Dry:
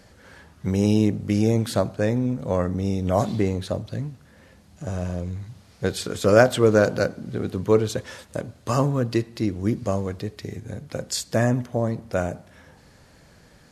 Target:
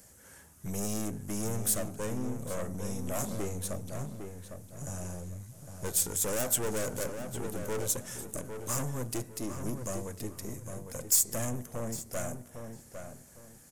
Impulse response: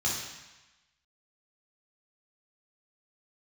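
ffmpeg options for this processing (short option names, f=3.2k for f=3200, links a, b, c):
-filter_complex "[0:a]aeval=exprs='(tanh(17.8*val(0)+0.6)-tanh(0.6))/17.8':c=same,aexciter=amount=9.2:drive=5:freq=6.2k,asplit=2[a][b];[b]adelay=805,lowpass=f=2.6k:p=1,volume=-7dB,asplit=2[c][d];[d]adelay=805,lowpass=f=2.6k:p=1,volume=0.28,asplit=2[e][f];[f]adelay=805,lowpass=f=2.6k:p=1,volume=0.28[g];[c][e][g]amix=inputs=3:normalize=0[h];[a][h]amix=inputs=2:normalize=0,volume=-6.5dB"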